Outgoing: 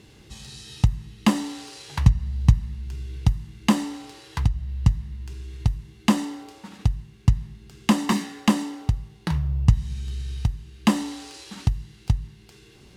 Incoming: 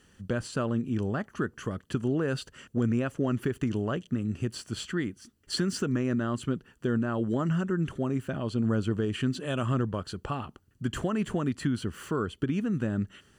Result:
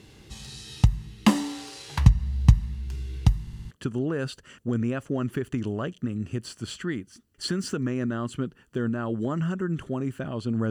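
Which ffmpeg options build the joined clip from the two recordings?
-filter_complex "[0:a]apad=whole_dur=10.7,atrim=end=10.7,asplit=5[a][b][c][d][e];[a]atrim=end=3.472[f];[b]atrim=start=3.408:end=3.472[g];[c]atrim=start=3.408:end=3.472[h];[d]atrim=start=3.408:end=3.472[i];[e]atrim=start=3.408:end=3.472[j];[1:a]atrim=start=1.798:end=8.79[k];[f][g]acrossfade=d=0.004:c1=hsin:c2=hsin[l];[l][h]acrossfade=d=0.004:c1=hsin:c2=hsin[m];[m][i]acrossfade=d=0.004:c1=hsin:c2=hsin[n];[n][j]acrossfade=d=0.004:c1=hsin:c2=hsin[o];[o][k]acrossfade=d=0.004:c1=hsin:c2=hsin"

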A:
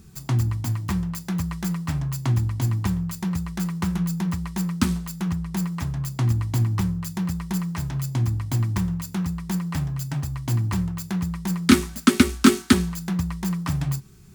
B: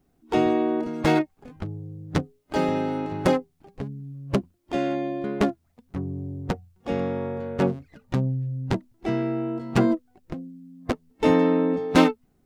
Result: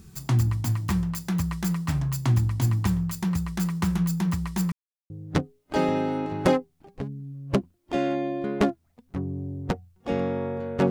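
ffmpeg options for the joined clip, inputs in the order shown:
-filter_complex "[0:a]apad=whole_dur=10.9,atrim=end=10.9,asplit=2[a][b];[a]atrim=end=4.72,asetpts=PTS-STARTPTS,afade=t=out:st=4.716:d=0.004:c=hsin[c];[b]atrim=start=4.72:end=5.1,asetpts=PTS-STARTPTS,volume=0[d];[1:a]atrim=start=1.9:end=7.7,asetpts=PTS-STARTPTS,afade=t=in:d=0.004:c=hsin[e];[c][d][e]concat=n=3:v=0:a=1"

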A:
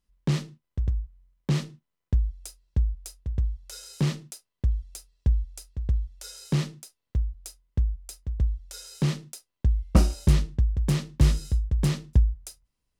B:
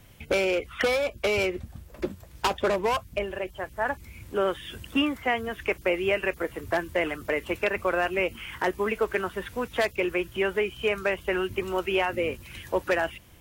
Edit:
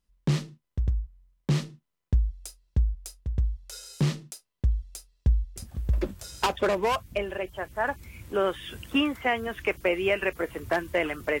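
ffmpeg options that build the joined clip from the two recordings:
-filter_complex "[0:a]apad=whole_dur=11.4,atrim=end=11.4,atrim=end=6.48,asetpts=PTS-STARTPTS[a];[1:a]atrim=start=1.57:end=7.41,asetpts=PTS-STARTPTS[b];[a][b]acrossfade=d=0.92:c1=log:c2=log"

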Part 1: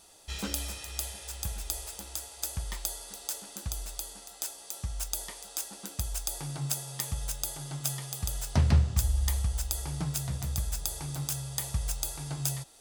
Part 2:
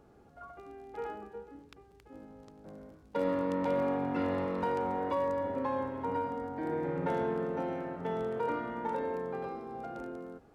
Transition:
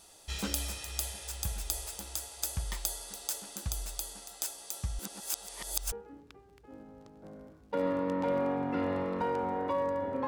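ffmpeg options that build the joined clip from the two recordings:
-filter_complex "[0:a]apad=whole_dur=10.27,atrim=end=10.27,asplit=2[a][b];[a]atrim=end=4.992[c];[b]atrim=start=4.988:end=5.922,asetpts=PTS-STARTPTS,areverse[d];[1:a]atrim=start=1.338:end=5.69[e];[c][d]acrossfade=d=0.004:c1=hsin:c2=hsin[f];[f][e]acrossfade=d=0.004:c1=hsin:c2=hsin"

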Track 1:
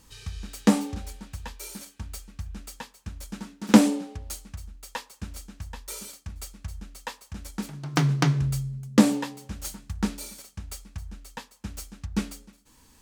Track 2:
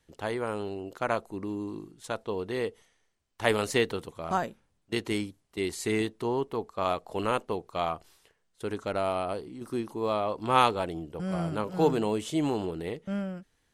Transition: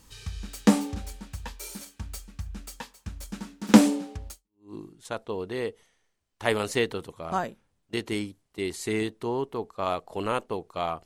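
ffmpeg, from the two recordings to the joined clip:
-filter_complex "[0:a]apad=whole_dur=11.05,atrim=end=11.05,atrim=end=4.74,asetpts=PTS-STARTPTS[a];[1:a]atrim=start=1.27:end=8.04,asetpts=PTS-STARTPTS[b];[a][b]acrossfade=d=0.46:c1=exp:c2=exp"

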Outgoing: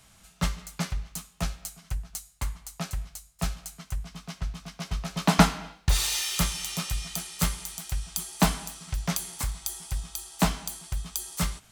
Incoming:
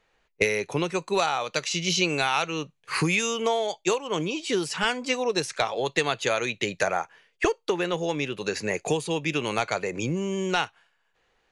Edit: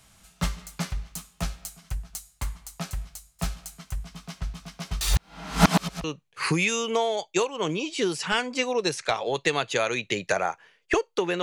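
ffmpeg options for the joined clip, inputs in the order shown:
-filter_complex "[0:a]apad=whole_dur=11.42,atrim=end=11.42,asplit=2[a][b];[a]atrim=end=5.012[c];[b]atrim=start=5.008:end=6.042,asetpts=PTS-STARTPTS,areverse[d];[1:a]atrim=start=2.548:end=7.93[e];[c][d]acrossfade=d=0.004:c1=hsin:c2=hsin[f];[f][e]acrossfade=d=0.004:c1=hsin:c2=hsin"

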